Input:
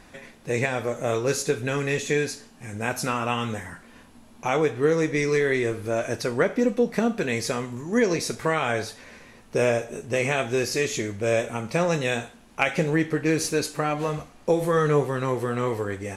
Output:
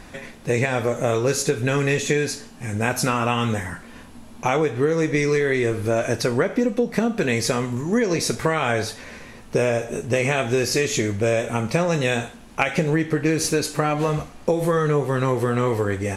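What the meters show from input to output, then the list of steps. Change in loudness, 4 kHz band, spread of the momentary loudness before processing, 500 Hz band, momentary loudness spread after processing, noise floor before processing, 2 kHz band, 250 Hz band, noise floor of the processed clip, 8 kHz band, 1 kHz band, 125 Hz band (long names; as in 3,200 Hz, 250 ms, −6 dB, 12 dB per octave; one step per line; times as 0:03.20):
+3.0 dB, +4.0 dB, 8 LU, +2.5 dB, 6 LU, −51 dBFS, +2.5 dB, +3.5 dB, −43 dBFS, +4.5 dB, +3.0 dB, +5.5 dB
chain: low-shelf EQ 160 Hz +4 dB
downward compressor, threshold −23 dBFS, peak gain reduction 8 dB
level +6.5 dB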